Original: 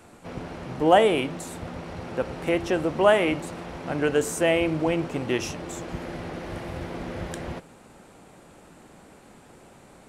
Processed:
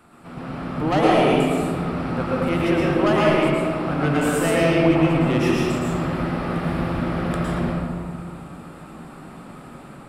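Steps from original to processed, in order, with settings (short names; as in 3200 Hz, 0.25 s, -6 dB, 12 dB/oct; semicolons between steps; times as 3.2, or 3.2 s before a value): thirty-one-band EQ 100 Hz -3 dB, 160 Hz +6 dB, 250 Hz +4 dB, 500 Hz -5 dB, 1250 Hz +9 dB, 6300 Hz -11 dB; AGC gain up to 4.5 dB; soft clip -14.5 dBFS, distortion -11 dB; reverb RT60 2.0 s, pre-delay 0.103 s, DRR -6 dB; gain -3.5 dB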